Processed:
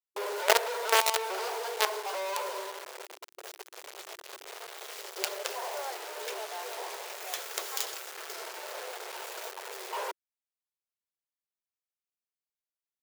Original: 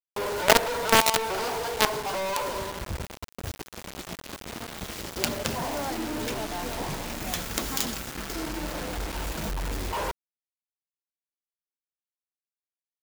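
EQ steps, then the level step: brick-wall FIR high-pass 360 Hz; -4.5 dB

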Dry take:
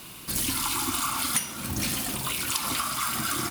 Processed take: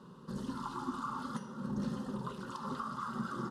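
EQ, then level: band-pass filter 280 Hz, Q 0.63; distance through air 53 m; static phaser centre 460 Hz, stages 8; +1.5 dB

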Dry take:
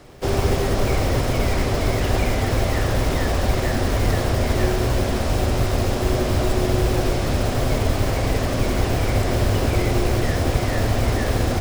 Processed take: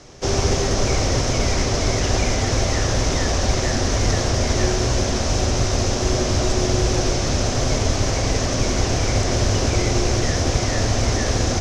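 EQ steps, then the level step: resonant low-pass 6.1 kHz, resonance Q 5; 0.0 dB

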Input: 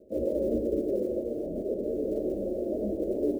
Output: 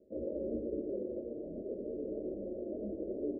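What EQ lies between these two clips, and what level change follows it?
Bessel low-pass 550 Hz, order 2; bass shelf 120 Hz -4.5 dB; -7.0 dB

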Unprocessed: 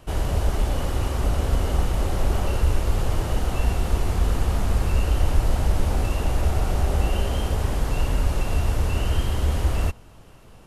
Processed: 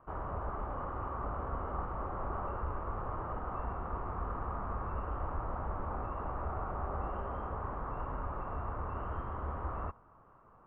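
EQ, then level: four-pole ladder low-pass 1.3 kHz, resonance 65%; distance through air 310 m; tilt EQ +2 dB/octave; +1.0 dB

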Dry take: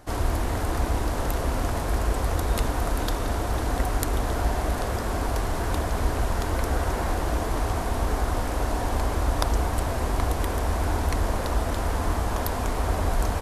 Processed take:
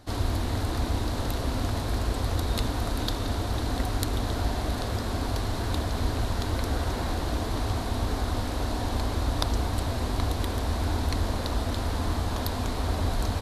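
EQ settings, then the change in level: fifteen-band graphic EQ 100 Hz +8 dB, 250 Hz +6 dB, 4 kHz +11 dB; -5.0 dB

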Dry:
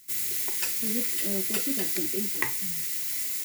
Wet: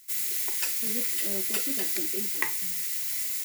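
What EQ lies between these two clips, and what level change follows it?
high-pass 400 Hz 6 dB/octave; 0.0 dB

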